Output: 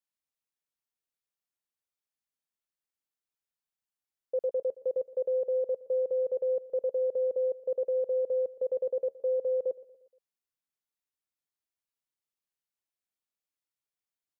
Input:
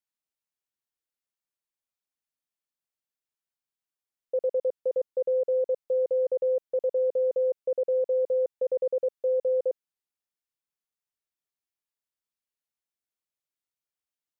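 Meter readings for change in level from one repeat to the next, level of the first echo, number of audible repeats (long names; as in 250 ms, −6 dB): −6.0 dB, −19.0 dB, 3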